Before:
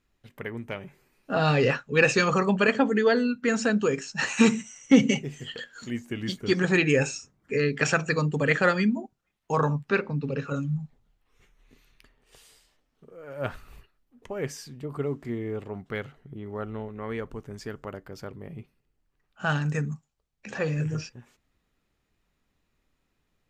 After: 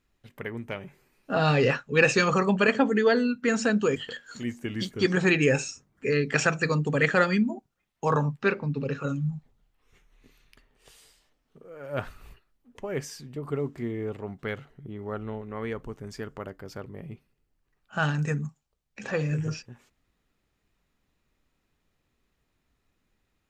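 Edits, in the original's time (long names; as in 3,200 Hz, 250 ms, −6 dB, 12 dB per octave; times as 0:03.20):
0:03.96–0:05.43: remove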